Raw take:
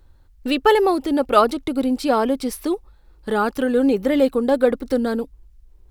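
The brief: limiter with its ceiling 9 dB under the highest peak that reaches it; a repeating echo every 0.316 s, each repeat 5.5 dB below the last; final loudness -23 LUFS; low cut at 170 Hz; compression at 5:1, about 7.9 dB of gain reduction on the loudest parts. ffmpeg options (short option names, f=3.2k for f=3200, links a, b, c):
-af "highpass=170,acompressor=threshold=-19dB:ratio=5,alimiter=limit=-18dB:level=0:latency=1,aecho=1:1:316|632|948|1264|1580|1896|2212:0.531|0.281|0.149|0.079|0.0419|0.0222|0.0118,volume=3.5dB"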